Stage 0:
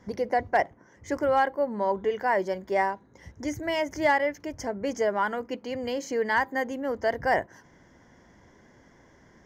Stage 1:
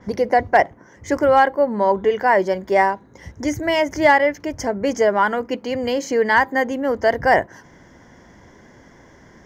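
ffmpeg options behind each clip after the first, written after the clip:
ffmpeg -i in.wav -af "adynamicequalizer=threshold=0.00398:dfrequency=5700:dqfactor=0.7:tfrequency=5700:tqfactor=0.7:attack=5:release=100:ratio=0.375:range=2:mode=cutabove:tftype=highshelf,volume=9dB" out.wav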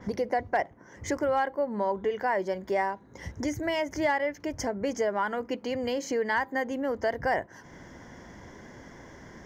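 ffmpeg -i in.wav -af "acompressor=threshold=-34dB:ratio=2" out.wav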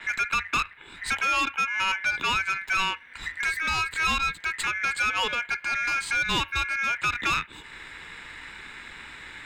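ffmpeg -i in.wav -af "aeval=exprs='val(0)*sin(2*PI*2000*n/s)':channel_layout=same,asoftclip=type=tanh:threshold=-26.5dB,afreqshift=-88,volume=8dB" out.wav

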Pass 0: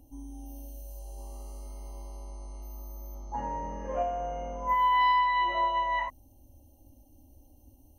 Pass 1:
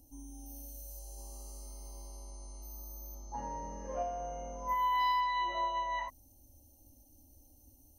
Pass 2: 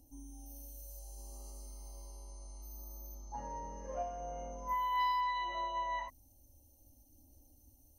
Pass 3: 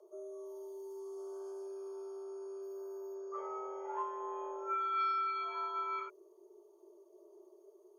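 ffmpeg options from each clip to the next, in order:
ffmpeg -i in.wav -af "highshelf=frequency=3700:width_type=q:width=1.5:gain=9.5,volume=-6dB" out.wav
ffmpeg -i in.wav -af "aphaser=in_gain=1:out_gain=1:delay=2.2:decay=0.22:speed=0.68:type=sinusoidal,volume=-3.5dB" out.wav
ffmpeg -i in.wav -af "afreqshift=340,aemphasis=mode=reproduction:type=riaa" out.wav

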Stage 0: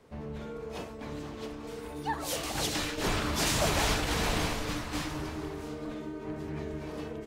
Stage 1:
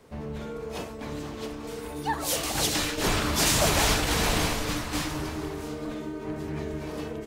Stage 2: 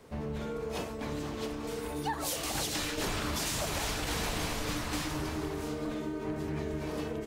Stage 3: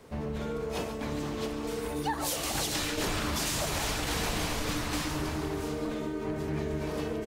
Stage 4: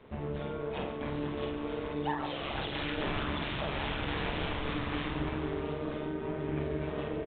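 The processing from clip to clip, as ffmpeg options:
ffmpeg -i in.wav -af "highshelf=frequency=6600:gain=6,volume=4dB" out.wav
ffmpeg -i in.wav -af "alimiter=limit=-18dB:level=0:latency=1:release=373,acompressor=threshold=-31dB:ratio=3" out.wav
ffmpeg -i in.wav -af "aecho=1:1:140:0.251,volume=2dB" out.wav
ffmpeg -i in.wav -filter_complex "[0:a]tremolo=f=140:d=0.667,asplit=2[link_01][link_02];[link_02]adelay=48,volume=-5dB[link_03];[link_01][link_03]amix=inputs=2:normalize=0" -ar 8000 -c:a pcm_alaw out.wav

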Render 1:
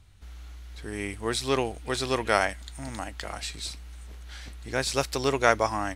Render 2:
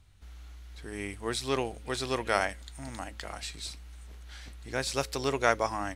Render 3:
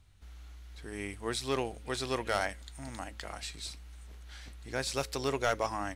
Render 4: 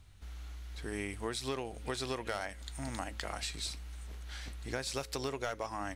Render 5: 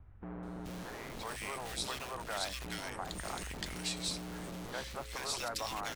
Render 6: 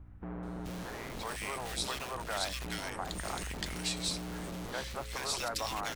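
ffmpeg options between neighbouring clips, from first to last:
ffmpeg -i in.wav -af "bandreject=frequency=107.3:width_type=h:width=4,bandreject=frequency=214.6:width_type=h:width=4,bandreject=frequency=321.9:width_type=h:width=4,bandreject=frequency=429.2:width_type=h:width=4,bandreject=frequency=536.5:width_type=h:width=4,volume=-4dB" out.wav
ffmpeg -i in.wav -af "asoftclip=type=hard:threshold=-18.5dB,volume=-2dB" out.wav
ffmpeg -i in.wav -af "acompressor=threshold=-37dB:ratio=10,volume=4dB" out.wav
ffmpeg -i in.wav -filter_complex "[0:a]acrossover=split=570|1200[link_01][link_02][link_03];[link_01]aeval=exprs='(mod(126*val(0)+1,2)-1)/126':channel_layout=same[link_04];[link_04][link_02][link_03]amix=inputs=3:normalize=0,acrossover=split=1700[link_05][link_06];[link_06]adelay=430[link_07];[link_05][link_07]amix=inputs=2:normalize=0,volume=2dB" out.wav
ffmpeg -i in.wav -af "aeval=exprs='val(0)+0.00141*(sin(2*PI*60*n/s)+sin(2*PI*2*60*n/s)/2+sin(2*PI*3*60*n/s)/3+sin(2*PI*4*60*n/s)/4+sin(2*PI*5*60*n/s)/5)':channel_layout=same,volume=2.5dB" out.wav

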